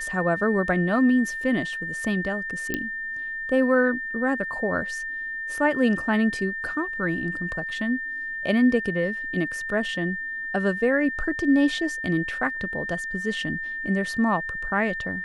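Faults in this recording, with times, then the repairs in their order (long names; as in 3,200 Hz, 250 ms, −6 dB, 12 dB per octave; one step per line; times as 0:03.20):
whistle 1,800 Hz −29 dBFS
0:02.74: click −11 dBFS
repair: click removal
notch filter 1,800 Hz, Q 30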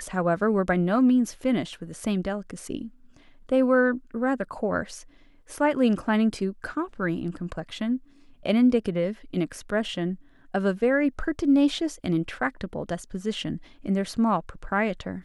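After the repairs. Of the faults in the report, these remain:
none of them is left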